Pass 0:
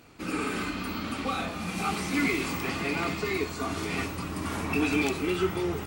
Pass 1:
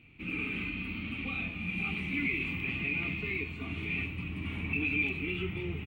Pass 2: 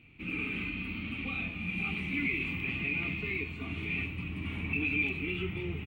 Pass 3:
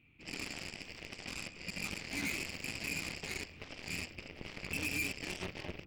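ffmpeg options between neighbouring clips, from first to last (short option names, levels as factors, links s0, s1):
-filter_complex "[0:a]firequalizer=gain_entry='entry(120,0);entry(540,-17);entry(1600,-16);entry(2400,6);entry(5000,-30);entry(14000,-24)':delay=0.05:min_phase=1,asplit=2[s0][s1];[s1]alimiter=level_in=1.12:limit=0.0631:level=0:latency=1,volume=0.891,volume=1.19[s2];[s0][s2]amix=inputs=2:normalize=0,volume=0.447"
-af anull
-af "bandreject=f=49.2:t=h:w=4,bandreject=f=98.4:t=h:w=4,bandreject=f=147.6:t=h:w=4,bandreject=f=196.8:t=h:w=4,bandreject=f=246:t=h:w=4,bandreject=f=295.2:t=h:w=4,bandreject=f=344.4:t=h:w=4,bandreject=f=393.6:t=h:w=4,bandreject=f=442.8:t=h:w=4,bandreject=f=492:t=h:w=4,bandreject=f=541.2:t=h:w=4,bandreject=f=590.4:t=h:w=4,bandreject=f=639.6:t=h:w=4,bandreject=f=688.8:t=h:w=4,bandreject=f=738:t=h:w=4,bandreject=f=787.2:t=h:w=4,bandreject=f=836.4:t=h:w=4,bandreject=f=885.6:t=h:w=4,bandreject=f=934.8:t=h:w=4,bandreject=f=984:t=h:w=4,bandreject=f=1033.2:t=h:w=4,bandreject=f=1082.4:t=h:w=4,bandreject=f=1131.6:t=h:w=4,bandreject=f=1180.8:t=h:w=4,bandreject=f=1230:t=h:w=4,bandreject=f=1279.2:t=h:w=4,bandreject=f=1328.4:t=h:w=4,bandreject=f=1377.6:t=h:w=4,bandreject=f=1426.8:t=h:w=4,bandreject=f=1476:t=h:w=4,bandreject=f=1525.2:t=h:w=4,bandreject=f=1574.4:t=h:w=4,bandreject=f=1623.6:t=h:w=4,aeval=exprs='0.106*(cos(1*acos(clip(val(0)/0.106,-1,1)))-cos(1*PI/2))+0.0531*(cos(2*acos(clip(val(0)/0.106,-1,1)))-cos(2*PI/2))+0.0211*(cos(7*acos(clip(val(0)/0.106,-1,1)))-cos(7*PI/2))+0.00531*(cos(8*acos(clip(val(0)/0.106,-1,1)))-cos(8*PI/2))':c=same,volume=31.6,asoftclip=hard,volume=0.0316"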